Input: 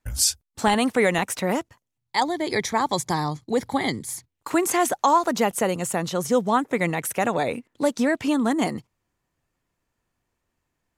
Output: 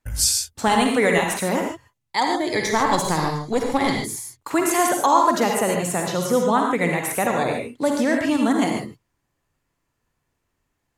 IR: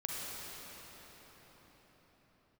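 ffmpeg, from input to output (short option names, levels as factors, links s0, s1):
-filter_complex "[0:a]asplit=3[s0][s1][s2];[s0]afade=t=out:st=2.65:d=0.02[s3];[s1]aeval=exprs='0.376*(cos(1*acos(clip(val(0)/0.376,-1,1)))-cos(1*PI/2))+0.0596*(cos(4*acos(clip(val(0)/0.376,-1,1)))-cos(4*PI/2))':c=same,afade=t=in:st=2.65:d=0.02,afade=t=out:st=3.88:d=0.02[s4];[s2]afade=t=in:st=3.88:d=0.02[s5];[s3][s4][s5]amix=inputs=3:normalize=0[s6];[1:a]atrim=start_sample=2205,atrim=end_sample=6174,asetrate=38808,aresample=44100[s7];[s6][s7]afir=irnorm=-1:irlink=0,volume=1.33"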